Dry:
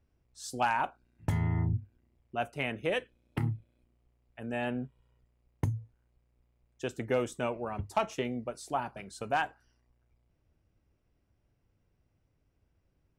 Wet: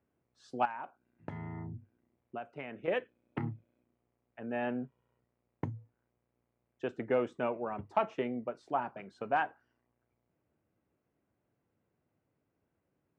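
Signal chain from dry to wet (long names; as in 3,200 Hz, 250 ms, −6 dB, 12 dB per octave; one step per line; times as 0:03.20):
band-pass filter 180–2,000 Hz
0:00.65–0:02.88: downward compressor 12 to 1, threshold −38 dBFS, peak gain reduction 12 dB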